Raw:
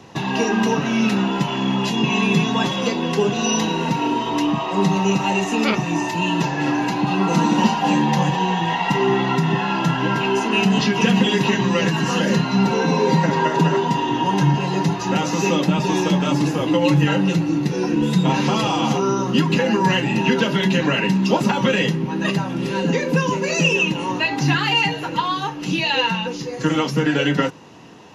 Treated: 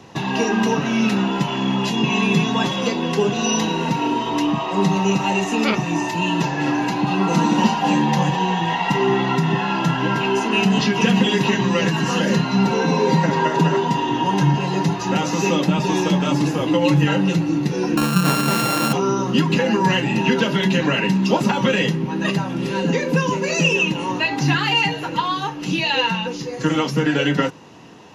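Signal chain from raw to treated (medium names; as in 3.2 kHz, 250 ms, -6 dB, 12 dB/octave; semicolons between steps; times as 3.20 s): 17.97–18.93 s: sorted samples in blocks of 32 samples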